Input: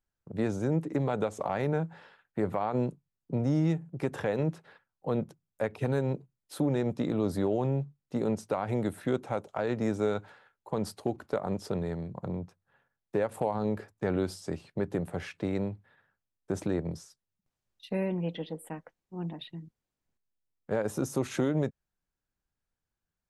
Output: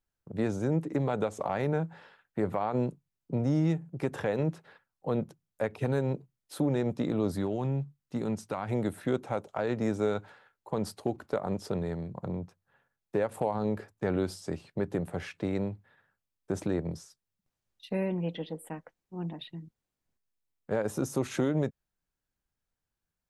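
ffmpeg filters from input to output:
ffmpeg -i in.wav -filter_complex "[0:a]asettb=1/sr,asplit=3[link_01][link_02][link_03];[link_01]atrim=end=7.314[link_04];[link_02]atrim=start=7.31:end=8.71,asetpts=PTS-STARTPTS,afade=type=in:duration=0.004:curve=qsin,afade=type=out:start_time=1.396:duration=0.004:curve=qsin,equalizer=frequency=510:width_type=o:width=1.3:gain=-6[link_05];[link_03]atrim=start=8.706[link_06];[link_04][link_05]acrossfade=duration=0.004:curve1=hsin:curve2=qsin[link_07];[link_07][link_06]acrossfade=duration=0.004:curve1=qsin:curve2=hsin" out.wav

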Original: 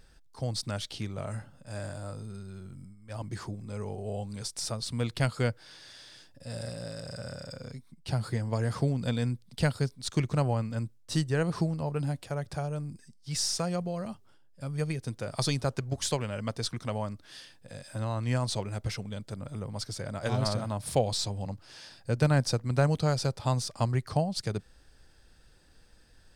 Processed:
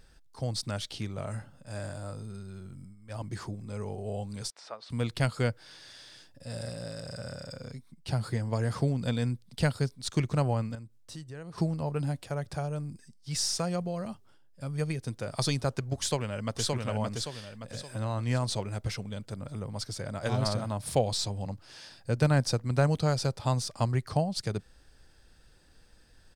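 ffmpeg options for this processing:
ffmpeg -i in.wav -filter_complex "[0:a]asettb=1/sr,asplit=3[link_01][link_02][link_03];[link_01]atrim=end=4.504[link_04];[link_02]atrim=start=4.5:end=4.9,asetpts=PTS-STARTPTS,afade=type=in:duration=0.004:curve=qsin,afade=type=out:start_time=0.396:duration=0.004:curve=qsin,highpass=630,lowpass=2200[link_05];[link_03]atrim=start=4.896[link_06];[link_04][link_05]acrossfade=duration=0.004:curve1=hsin:curve2=qsin[link_07];[link_07][link_06]acrossfade=duration=0.004:curve1=qsin:curve2=hsin,asettb=1/sr,asplit=3[link_08][link_09][link_10];[link_08]atrim=end=10.754[link_11];[link_09]atrim=start=10.75:end=11.58,asetpts=PTS-STARTPTS,afade=type=in:duration=0.004:curve=qsin,afade=type=out:start_time=0.826:duration=0.004:curve=qsin,acompressor=threshold=-47dB:ratio=2.5:attack=3.2:release=140:knee=1:detection=peak[link_12];[link_10]atrim=start=11.576[link_13];[link_11][link_12]acrossfade=duration=0.004:curve1=hsin:curve2=qsin[link_14];[link_14][link_13]acrossfade=duration=0.004:curve1=qsin:curve2=hsin,asplit=2[link_15][link_16];[link_16]afade=type=in:start_time=15.98:duration=0.01,afade=type=out:start_time=16.7:duration=0.01,aecho=0:1:570|1140|1710|2280|2850:0.749894|0.299958|0.119983|0.0479932|0.0191973[link_17];[link_15][link_17]amix=inputs=2:normalize=0" out.wav

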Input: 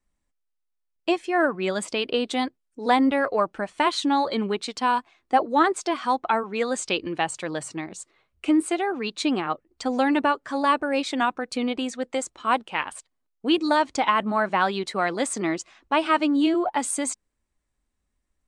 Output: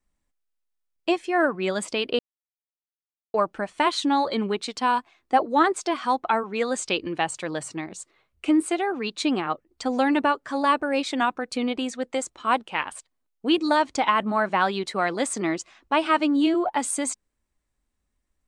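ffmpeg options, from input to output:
ffmpeg -i in.wav -filter_complex "[0:a]asplit=3[link_01][link_02][link_03];[link_01]atrim=end=2.19,asetpts=PTS-STARTPTS,afade=type=out:start_time=2.186:duration=0.004:curve=hsin[link_04];[link_02]atrim=start=2.19:end=3.34,asetpts=PTS-STARTPTS,volume=0[link_05];[link_03]atrim=start=3.34,asetpts=PTS-STARTPTS,afade=type=in:duration=0.004:curve=hsin[link_06];[link_04][link_05][link_06]concat=n=3:v=0:a=1" out.wav

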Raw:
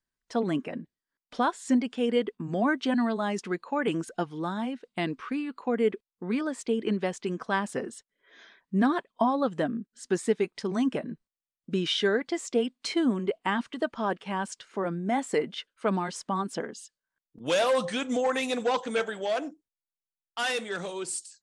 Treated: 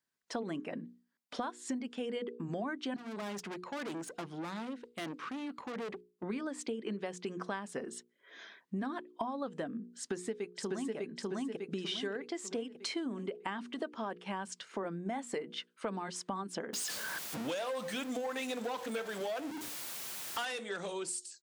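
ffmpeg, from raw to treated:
ffmpeg -i in.wav -filter_complex "[0:a]asettb=1/sr,asplit=3[link_01][link_02][link_03];[link_01]atrim=end=2.964[link_04];[link_02]atrim=start=2.96:end=6.23,asetpts=PTS-STARTPTS,afade=type=in:duration=0.004:curve=qsin,afade=type=out:start_time=3.266:duration=0.004:curve=qsin,aeval=exprs='(tanh(70.8*val(0)+0.55)-tanh(0.55))/70.8':channel_layout=same[link_05];[link_03]atrim=start=6.226[link_06];[link_04][link_05]acrossfade=duration=0.004:curve1=hsin:curve2=qsin[link_07];[link_07][link_06]acrossfade=duration=0.004:curve1=qsin:curve2=hsin,asplit=2[link_08][link_09];[link_09]afade=type=in:start_time=9.94:duration=0.01,afade=type=out:start_time=10.96:duration=0.01,aecho=0:1:600|1200|1800|2400|3000:0.944061|0.377624|0.15105|0.0604199|0.024168[link_10];[link_08][link_10]amix=inputs=2:normalize=0,asettb=1/sr,asplit=3[link_11][link_12][link_13];[link_11]atrim=end=16.734[link_14];[link_12]atrim=start=16.73:end=20.45,asetpts=PTS-STARTPTS,afade=type=in:duration=0.004:curve=qsin,afade=type=out:start_time=3.716:duration=0.004:curve=qsin,aeval=exprs='val(0)+0.5*0.0251*sgn(val(0))':channel_layout=same[link_15];[link_13]atrim=start=20.446[link_16];[link_14][link_15]acrossfade=duration=0.004:curve1=hsin:curve2=qsin[link_17];[link_17][link_16]acrossfade=duration=0.004:curve1=qsin:curve2=hsin,highpass=150,bandreject=frequency=60:width_type=h:width=6,bandreject=frequency=120:width_type=h:width=6,bandreject=frequency=180:width_type=h:width=6,bandreject=frequency=240:width_type=h:width=6,bandreject=frequency=300:width_type=h:width=6,bandreject=frequency=360:width_type=h:width=6,bandreject=frequency=420:width_type=h:width=6,bandreject=frequency=480:width_type=h:width=6,acompressor=threshold=-37dB:ratio=6,volume=1.5dB" out.wav

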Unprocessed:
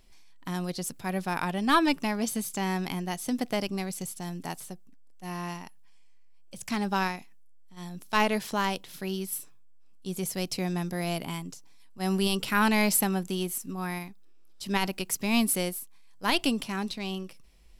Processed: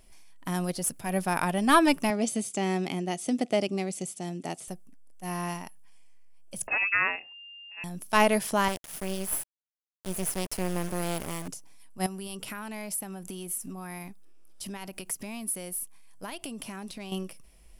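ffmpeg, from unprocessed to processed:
ffmpeg -i in.wav -filter_complex "[0:a]asettb=1/sr,asplit=3[link_01][link_02][link_03];[link_01]atrim=end=0.714[link_04];[link_02]atrim=start=0.71:end=1.12,asetpts=PTS-STARTPTS,afade=type=in:duration=0.004:curve=qsin,afade=type=out:start_time=0.406:duration=0.004:curve=qsin,aeval=exprs='(tanh(17.8*val(0)+0.35)-tanh(0.35))/17.8':channel_layout=same[link_05];[link_03]atrim=start=1.116[link_06];[link_04][link_05]acrossfade=duration=0.004:curve1=hsin:curve2=qsin[link_07];[link_07][link_06]acrossfade=duration=0.004:curve1=qsin:curve2=hsin,asettb=1/sr,asplit=3[link_08][link_09][link_10];[link_08]atrim=end=2.104[link_11];[link_09]atrim=start=2.1:end=4.68,asetpts=PTS-STARTPTS,afade=type=in:duration=0.004:curve=qsin,afade=type=out:start_time=2.576:duration=0.004:curve=qsin,highpass=160,equalizer=frequency=360:width_type=q:width=4:gain=4,equalizer=frequency=1000:width_type=q:width=4:gain=-9,equalizer=frequency=1600:width_type=q:width=4:gain=-8,equalizer=frequency=5300:width_type=q:width=4:gain=-4,lowpass=frequency=8000:width=0.5412,lowpass=frequency=8000:width=1.3066[link_12];[link_10]atrim=start=4.676[link_13];[link_11][link_12]acrossfade=duration=0.004:curve1=hsin:curve2=qsin[link_14];[link_14][link_13]acrossfade=duration=0.004:curve1=qsin:curve2=hsin,asettb=1/sr,asplit=3[link_15][link_16][link_17];[link_15]atrim=end=6.674[link_18];[link_16]atrim=start=6.67:end=7.84,asetpts=PTS-STARTPTS,afade=type=in:duration=0.004:curve=qsin,afade=type=out:start_time=1.166:duration=0.004:curve=qsin,lowpass=frequency=2400:width_type=q:width=0.5098,lowpass=frequency=2400:width_type=q:width=0.6013,lowpass=frequency=2400:width_type=q:width=0.9,lowpass=frequency=2400:width_type=q:width=2.563,afreqshift=-2800[link_19];[link_17]atrim=start=7.836[link_20];[link_18][link_19]acrossfade=duration=0.004:curve1=hsin:curve2=qsin[link_21];[link_21][link_20]acrossfade=duration=0.004:curve1=qsin:curve2=hsin,asettb=1/sr,asplit=3[link_22][link_23][link_24];[link_22]atrim=end=8.684[link_25];[link_23]atrim=start=8.68:end=11.48,asetpts=PTS-STARTPTS,afade=type=in:duration=0.004:curve=qsin,afade=type=out:start_time=2.796:duration=0.004:curve=qsin,acrusher=bits=4:dc=4:mix=0:aa=0.000001[link_26];[link_24]atrim=start=11.476[link_27];[link_25][link_26]acrossfade=duration=0.004:curve1=hsin:curve2=qsin[link_28];[link_28][link_27]acrossfade=duration=0.004:curve1=qsin:curve2=hsin,asettb=1/sr,asplit=3[link_29][link_30][link_31];[link_29]atrim=end=12.064[link_32];[link_30]atrim=start=12.06:end=17.12,asetpts=PTS-STARTPTS,afade=type=in:duration=0.004:curve=qsin,afade=type=out:start_time=5.056:duration=0.004:curve=qsin,acompressor=threshold=-37dB:ratio=10:attack=3.2:release=140:knee=1:detection=peak[link_33];[link_31]atrim=start=17.116[link_34];[link_32][link_33]acrossfade=duration=0.004:curve1=hsin:curve2=qsin[link_35];[link_35][link_34]acrossfade=duration=0.004:curve1=qsin:curve2=hsin,equalizer=frequency=630:width_type=o:width=0.33:gain=5,equalizer=frequency=4000:width_type=o:width=0.33:gain=-6,equalizer=frequency=10000:width_type=o:width=0.33:gain=11,volume=2dB" out.wav

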